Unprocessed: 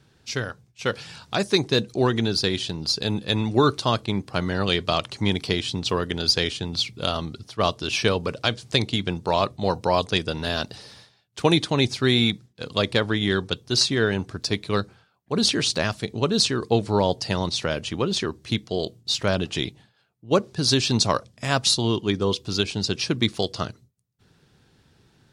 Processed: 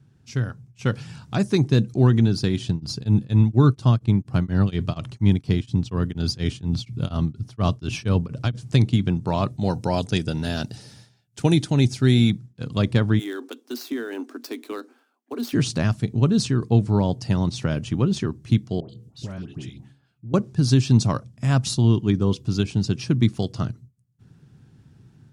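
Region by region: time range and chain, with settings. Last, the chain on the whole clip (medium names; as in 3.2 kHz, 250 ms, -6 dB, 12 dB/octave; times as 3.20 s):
2.69–8.55 s: bass shelf 130 Hz +7 dB + tremolo of two beating tones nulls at 4.2 Hz
9.47–12.30 s: tone controls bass -3 dB, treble +6 dB + band-stop 1.1 kHz, Q 5.1
13.19–15.53 s: dead-time distortion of 0.05 ms + Chebyshev high-pass 240 Hz, order 8 + compression 5:1, threshold -26 dBFS
18.80–20.34 s: de-hum 68.72 Hz, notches 7 + compression 3:1, threshold -38 dBFS + phase dispersion highs, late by 94 ms, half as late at 1.2 kHz
whole clip: ten-band graphic EQ 125 Hz +10 dB, 250 Hz +4 dB, 500 Hz -6 dB, 1 kHz -3 dB, 2 kHz -4 dB, 4 kHz -9 dB; level rider gain up to 5.5 dB; treble shelf 9.3 kHz -8 dB; trim -3.5 dB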